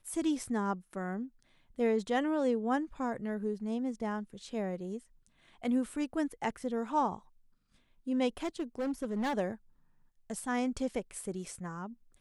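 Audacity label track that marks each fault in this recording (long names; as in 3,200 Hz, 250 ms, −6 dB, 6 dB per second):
8.380000	9.340000	clipping −29.5 dBFS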